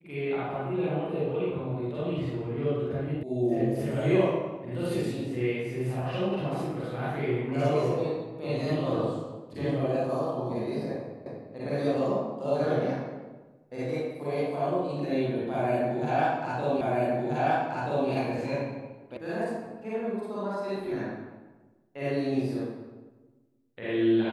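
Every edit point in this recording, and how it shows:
3.23 s: sound stops dead
11.26 s: repeat of the last 0.25 s
16.81 s: repeat of the last 1.28 s
19.17 s: sound stops dead

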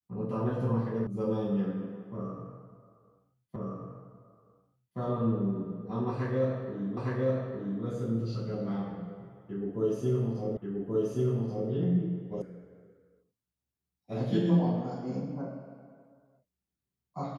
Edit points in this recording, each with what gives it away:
1.07 s: sound stops dead
3.56 s: repeat of the last 1.42 s
6.97 s: repeat of the last 0.86 s
10.57 s: repeat of the last 1.13 s
12.42 s: sound stops dead

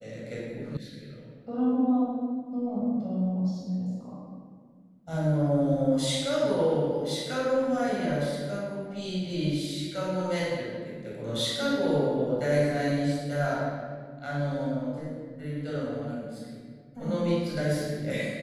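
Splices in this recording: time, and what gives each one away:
0.77 s: sound stops dead

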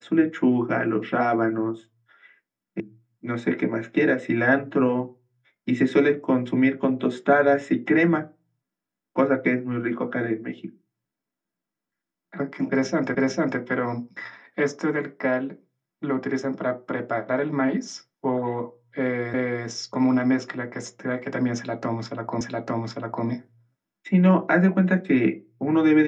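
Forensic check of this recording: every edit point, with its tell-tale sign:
2.80 s: sound stops dead
13.15 s: repeat of the last 0.45 s
19.34 s: repeat of the last 0.33 s
22.41 s: repeat of the last 0.85 s

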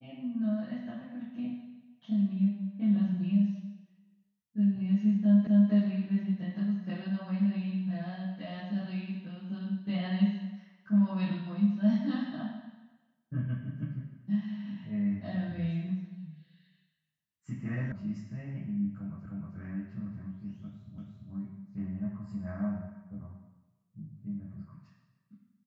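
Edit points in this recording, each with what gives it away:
5.47 s: repeat of the last 0.25 s
17.92 s: sound stops dead
19.26 s: repeat of the last 0.31 s
20.98 s: repeat of the last 0.34 s

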